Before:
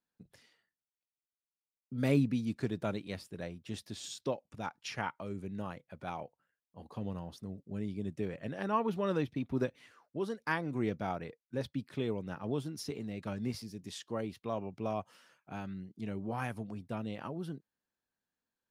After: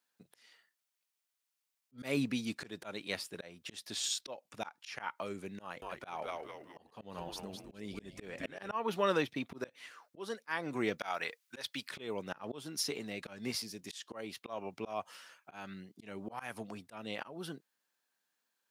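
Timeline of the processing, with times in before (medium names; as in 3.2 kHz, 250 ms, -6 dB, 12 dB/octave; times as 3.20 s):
5.61–8.74 s: frequency-shifting echo 208 ms, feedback 49%, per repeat -150 Hz, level -5.5 dB
10.98–11.91 s: tilt shelf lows -8 dB, about 650 Hz
whole clip: high-pass 1 kHz 6 dB/octave; slow attack 212 ms; trim +9.5 dB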